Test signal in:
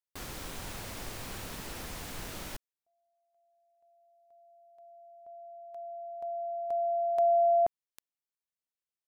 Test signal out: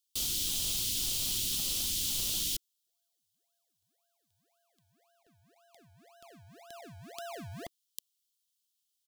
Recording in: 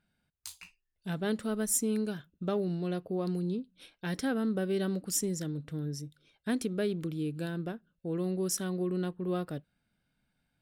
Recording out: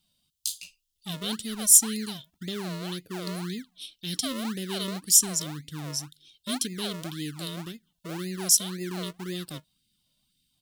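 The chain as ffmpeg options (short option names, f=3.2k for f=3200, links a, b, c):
-filter_complex "[0:a]firequalizer=gain_entry='entry(330,0);entry(630,-16);entry(1600,-17);entry(3100,15)':delay=0.05:min_phase=1,acrossover=split=920[a][b];[a]acrusher=samples=38:mix=1:aa=0.000001:lfo=1:lforange=38:lforate=1.9[c];[c][b]amix=inputs=2:normalize=0,volume=-1dB"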